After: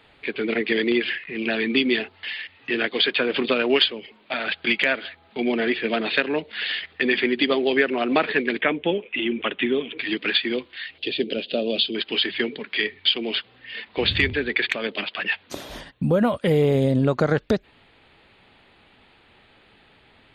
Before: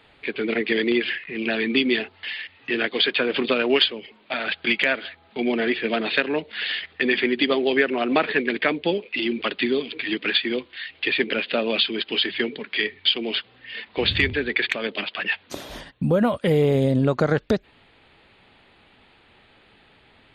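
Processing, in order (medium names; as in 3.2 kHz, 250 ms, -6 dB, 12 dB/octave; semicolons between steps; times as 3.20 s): 8.61–9.98 s: steep low-pass 3.5 kHz 72 dB/octave; 10.98–11.95 s: high-order bell 1.4 kHz -15.5 dB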